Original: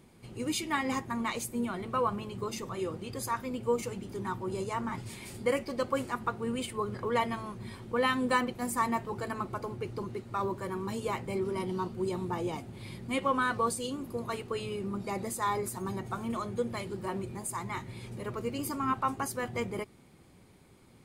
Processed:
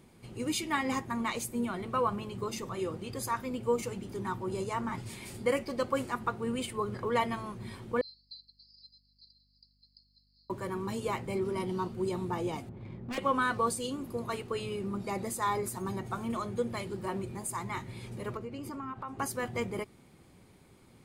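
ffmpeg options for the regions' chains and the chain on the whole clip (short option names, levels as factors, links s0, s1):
-filter_complex "[0:a]asettb=1/sr,asplit=3[s0][s1][s2];[s0]atrim=end=8.014[s3];[s1]atrim=start=8.01:end=10.5,asetpts=PTS-STARTPTS,afade=t=in:d=0.004:c=qsin,afade=t=out:st=2.486:d=0.004:c=qsin,asuperpass=centerf=4600:order=20:qfactor=3.9,aeval=exprs='val(0)+0.000282*(sin(2*PI*50*n/s)+sin(2*PI*2*50*n/s)/2+sin(2*PI*3*50*n/s)/3+sin(2*PI*4*50*n/s)/4+sin(2*PI*5*50*n/s)/5)':c=same[s4];[s2]atrim=start=10.496[s5];[s3][s4]acrossfade=d=0.004:c1=hsin:c2=qsin[s6];[s6][s5]acrossfade=d=0.004:c1=qsin:c2=hsin,asettb=1/sr,asplit=3[s7][s8][s9];[s7]atrim=end=12.694[s10];[s8]atrim=start=12.69:end=13.18,asetpts=PTS-STARTPTS,afade=t=in:d=0.004:c=qsin,afade=t=out:st=0.486:d=0.004:c=qsin,adynamicsmooth=sensitivity=5:basefreq=1100,aeval=exprs='0.0251*(abs(mod(val(0)/0.0251+3,4)-2)-1)':c=same[s11];[s9]atrim=start=13.176[s12];[s10][s11]acrossfade=d=0.004:c1=hsin:c2=qsin[s13];[s13][s12]acrossfade=d=0.004:c1=qsin:c2=hsin,asettb=1/sr,asplit=3[s14][s15][s16];[s14]atrim=end=18.374[s17];[s15]atrim=start=18.37:end=19.19,asetpts=PTS-STARTPTS,afade=t=in:d=0.004:c=qsin,afade=t=out:st=0.816:d=0.004:c=qsin,lowpass=f=2400:p=1,acompressor=threshold=0.0141:ratio=4:attack=3.2:release=140:knee=1:detection=peak[s18];[s16]atrim=start=19.186[s19];[s17][s18]acrossfade=d=0.004:c1=hsin:c2=qsin[s20];[s20][s19]acrossfade=d=0.004:c1=qsin:c2=hsin"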